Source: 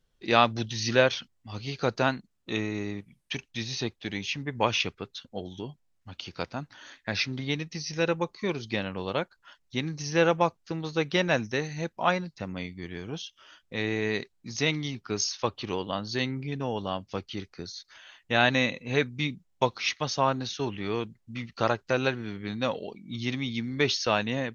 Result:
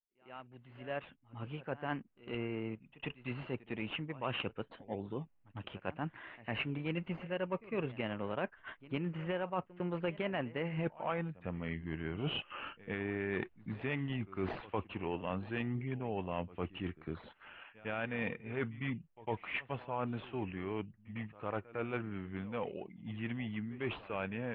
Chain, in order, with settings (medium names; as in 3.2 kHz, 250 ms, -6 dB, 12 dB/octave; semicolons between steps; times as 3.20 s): Doppler pass-by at 10.85 s, 29 m/s, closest 2.2 m; recorder AGC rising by 22 dB/s; in parallel at -11 dB: decimation with a swept rate 13×, swing 60% 2.7 Hz; on the sum: elliptic low-pass 2.8 kHz, stop band 50 dB; reverse; compression 5:1, threshold -40 dBFS, peak gain reduction 15 dB; reverse; pre-echo 104 ms -19 dB; trim +6 dB